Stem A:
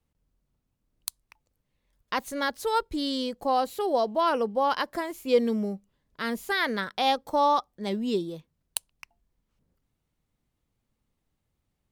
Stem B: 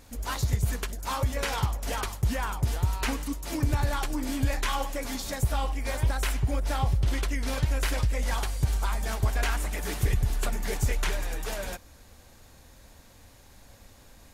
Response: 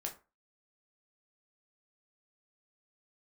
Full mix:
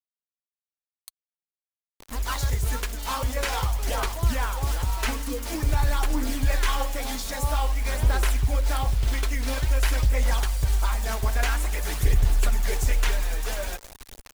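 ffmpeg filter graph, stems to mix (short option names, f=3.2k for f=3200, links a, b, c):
-filter_complex "[0:a]acrusher=bits=4:mix=0:aa=0.000001,volume=-13dB[a];[1:a]lowshelf=f=330:g=6.5,bandreject=f=92.1:t=h:w=4,bandreject=f=184.2:t=h:w=4,bandreject=f=276.3:t=h:w=4,bandreject=f=368.4:t=h:w=4,bandreject=f=460.5:t=h:w=4,bandreject=f=552.6:t=h:w=4,bandreject=f=644.7:t=h:w=4,bandreject=f=736.8:t=h:w=4,bandreject=f=828.9:t=h:w=4,bandreject=f=921:t=h:w=4,acrusher=bits=6:mix=0:aa=0.000001,adelay=2000,volume=2dB[b];[a][b]amix=inputs=2:normalize=0,equalizer=f=130:t=o:w=2.7:g=-11,aphaser=in_gain=1:out_gain=1:delay=4.6:decay=0.31:speed=0.49:type=sinusoidal"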